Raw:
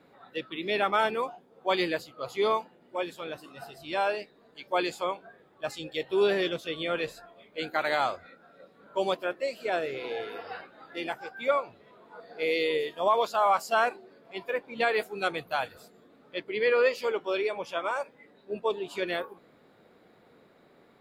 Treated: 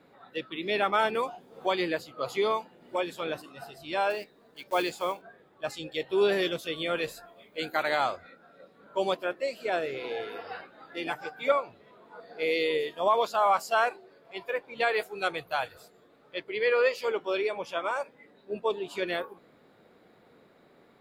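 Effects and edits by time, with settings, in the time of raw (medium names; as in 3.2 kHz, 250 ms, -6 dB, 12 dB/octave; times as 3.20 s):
1.15–3.42 s: three bands compressed up and down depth 70%
4.10–5.23 s: block-companded coder 5-bit
6.32–7.83 s: treble shelf 8.7 kHz +11.5 dB
11.06–11.52 s: comb 6.7 ms, depth 89%
13.69–17.08 s: peaking EQ 230 Hz -8.5 dB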